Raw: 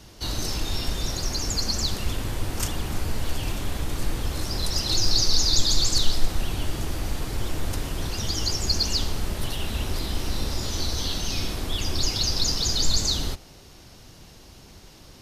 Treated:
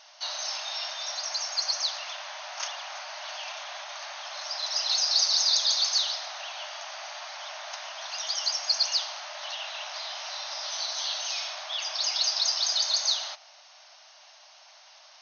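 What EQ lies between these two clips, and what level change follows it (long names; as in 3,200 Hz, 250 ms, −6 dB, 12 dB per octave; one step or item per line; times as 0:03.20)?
linear-phase brick-wall band-pass 570–6,600 Hz
0.0 dB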